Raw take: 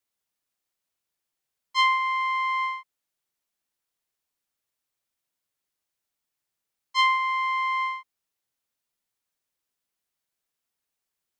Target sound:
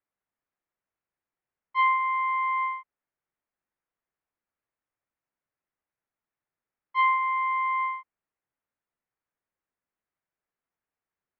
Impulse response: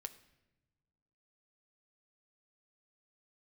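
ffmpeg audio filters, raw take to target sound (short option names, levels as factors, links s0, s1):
-af "lowpass=f=2100:w=0.5412,lowpass=f=2100:w=1.3066"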